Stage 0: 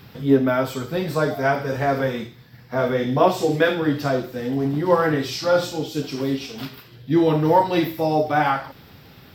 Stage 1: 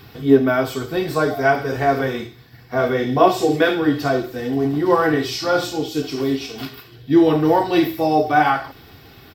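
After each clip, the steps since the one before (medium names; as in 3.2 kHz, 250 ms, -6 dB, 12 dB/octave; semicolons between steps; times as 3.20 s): comb 2.7 ms, depth 47%; trim +2 dB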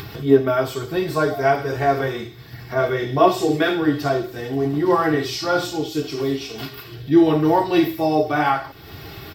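comb of notches 250 Hz; upward compressor, threshold -26 dBFS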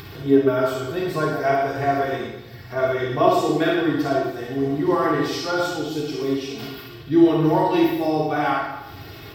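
reverberation RT60 0.95 s, pre-delay 38 ms, DRR -0.5 dB; trim -5 dB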